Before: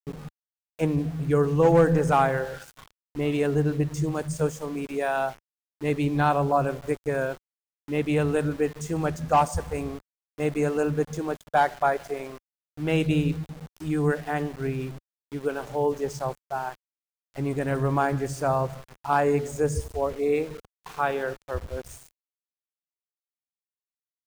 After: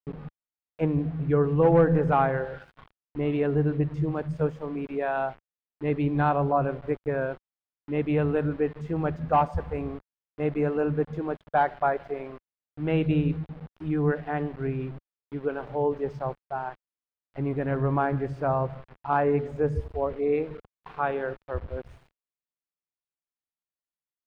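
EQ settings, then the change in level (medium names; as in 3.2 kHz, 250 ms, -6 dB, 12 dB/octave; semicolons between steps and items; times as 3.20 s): distance through air 410 m; 0.0 dB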